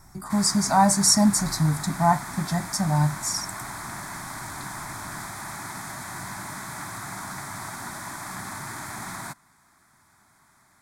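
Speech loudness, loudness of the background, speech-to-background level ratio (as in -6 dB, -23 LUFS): -22.0 LUFS, -35.0 LUFS, 13.0 dB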